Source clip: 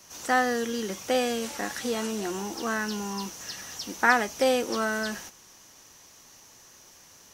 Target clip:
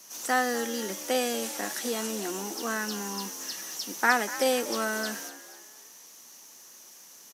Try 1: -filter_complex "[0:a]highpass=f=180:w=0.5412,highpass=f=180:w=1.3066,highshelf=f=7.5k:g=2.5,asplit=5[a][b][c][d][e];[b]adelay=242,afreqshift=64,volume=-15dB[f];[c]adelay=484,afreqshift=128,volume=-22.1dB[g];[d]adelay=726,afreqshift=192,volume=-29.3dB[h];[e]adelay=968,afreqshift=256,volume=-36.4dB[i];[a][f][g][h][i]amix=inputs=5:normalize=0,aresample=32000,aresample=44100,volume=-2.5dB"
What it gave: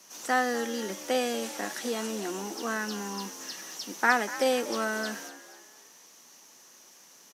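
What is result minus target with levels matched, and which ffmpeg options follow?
8000 Hz band -3.5 dB
-filter_complex "[0:a]highpass=f=180:w=0.5412,highpass=f=180:w=1.3066,highshelf=f=7.5k:g=12.5,asplit=5[a][b][c][d][e];[b]adelay=242,afreqshift=64,volume=-15dB[f];[c]adelay=484,afreqshift=128,volume=-22.1dB[g];[d]adelay=726,afreqshift=192,volume=-29.3dB[h];[e]adelay=968,afreqshift=256,volume=-36.4dB[i];[a][f][g][h][i]amix=inputs=5:normalize=0,aresample=32000,aresample=44100,volume=-2.5dB"

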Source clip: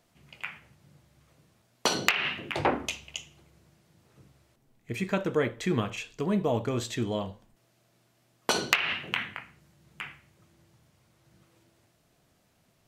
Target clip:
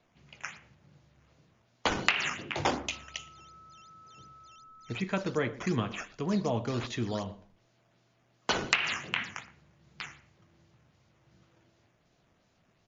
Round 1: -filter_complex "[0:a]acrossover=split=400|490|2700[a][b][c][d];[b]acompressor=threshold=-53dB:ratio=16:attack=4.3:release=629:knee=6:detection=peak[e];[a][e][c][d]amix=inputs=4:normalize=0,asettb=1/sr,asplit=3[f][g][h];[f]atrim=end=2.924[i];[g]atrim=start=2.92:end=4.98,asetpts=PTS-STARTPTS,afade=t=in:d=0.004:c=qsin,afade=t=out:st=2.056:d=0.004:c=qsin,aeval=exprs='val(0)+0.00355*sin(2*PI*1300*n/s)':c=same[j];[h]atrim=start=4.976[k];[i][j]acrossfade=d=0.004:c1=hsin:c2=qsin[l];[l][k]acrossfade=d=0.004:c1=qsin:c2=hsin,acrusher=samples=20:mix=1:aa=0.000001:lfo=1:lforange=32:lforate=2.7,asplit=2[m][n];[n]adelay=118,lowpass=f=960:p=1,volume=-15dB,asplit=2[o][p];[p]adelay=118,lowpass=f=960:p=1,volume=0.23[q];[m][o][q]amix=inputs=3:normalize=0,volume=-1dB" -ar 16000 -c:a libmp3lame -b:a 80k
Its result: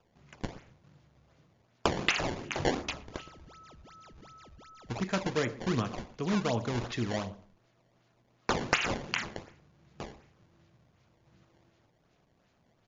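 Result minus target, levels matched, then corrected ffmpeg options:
decimation with a swept rate: distortion +8 dB
-filter_complex "[0:a]acrossover=split=400|490|2700[a][b][c][d];[b]acompressor=threshold=-53dB:ratio=16:attack=4.3:release=629:knee=6:detection=peak[e];[a][e][c][d]amix=inputs=4:normalize=0,asettb=1/sr,asplit=3[f][g][h];[f]atrim=end=2.924[i];[g]atrim=start=2.92:end=4.98,asetpts=PTS-STARTPTS,afade=t=in:d=0.004:c=qsin,afade=t=out:st=2.056:d=0.004:c=qsin,aeval=exprs='val(0)+0.00355*sin(2*PI*1300*n/s)':c=same[j];[h]atrim=start=4.976[k];[i][j]acrossfade=d=0.004:c1=hsin:c2=qsin[l];[l][k]acrossfade=d=0.004:c1=qsin:c2=hsin,acrusher=samples=6:mix=1:aa=0.000001:lfo=1:lforange=9.6:lforate=2.7,asplit=2[m][n];[n]adelay=118,lowpass=f=960:p=1,volume=-15dB,asplit=2[o][p];[p]adelay=118,lowpass=f=960:p=1,volume=0.23[q];[m][o][q]amix=inputs=3:normalize=0,volume=-1dB" -ar 16000 -c:a libmp3lame -b:a 80k

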